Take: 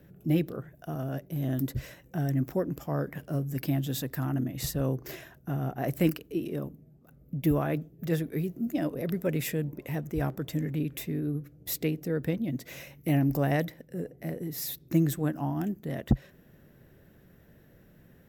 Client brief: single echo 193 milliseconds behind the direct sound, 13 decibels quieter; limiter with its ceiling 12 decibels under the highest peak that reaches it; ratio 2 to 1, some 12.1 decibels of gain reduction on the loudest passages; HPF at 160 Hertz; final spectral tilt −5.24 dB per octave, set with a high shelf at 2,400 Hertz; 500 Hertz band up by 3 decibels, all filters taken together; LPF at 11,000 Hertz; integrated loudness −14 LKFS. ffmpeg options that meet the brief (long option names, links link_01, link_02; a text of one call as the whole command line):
ffmpeg -i in.wav -af "highpass=160,lowpass=11000,equalizer=frequency=500:width_type=o:gain=3.5,highshelf=frequency=2400:gain=5.5,acompressor=threshold=-42dB:ratio=2,alimiter=level_in=10dB:limit=-24dB:level=0:latency=1,volume=-10dB,aecho=1:1:193:0.224,volume=30dB" out.wav